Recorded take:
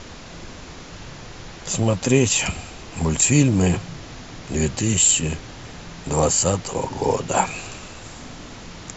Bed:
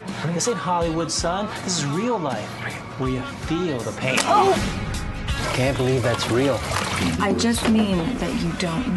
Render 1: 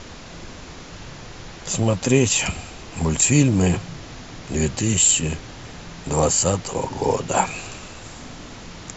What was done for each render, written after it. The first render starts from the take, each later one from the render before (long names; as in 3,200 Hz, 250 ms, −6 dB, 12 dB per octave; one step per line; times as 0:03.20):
no processing that can be heard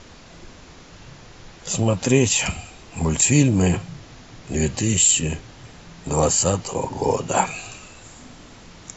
noise reduction from a noise print 6 dB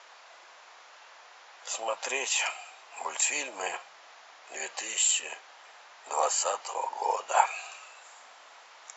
high-pass filter 710 Hz 24 dB per octave
high-shelf EQ 2,900 Hz −10.5 dB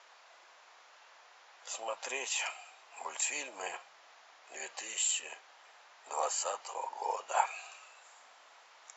level −6.5 dB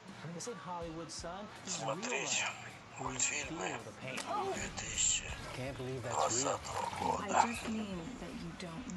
mix in bed −21 dB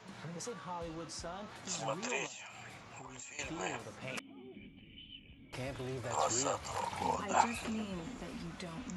0:02.26–0:03.39: downward compressor 12 to 1, threshold −45 dBFS
0:04.19–0:05.53: formant resonators in series i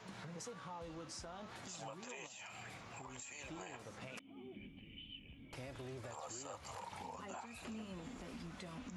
downward compressor 3 to 1, threshold −47 dBFS, peak gain reduction 18 dB
brickwall limiter −38 dBFS, peak gain reduction 7.5 dB